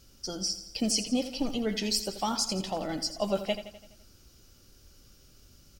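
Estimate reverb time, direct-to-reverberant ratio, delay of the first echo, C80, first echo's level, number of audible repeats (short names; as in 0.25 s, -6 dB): none, none, 84 ms, none, -12.0 dB, 5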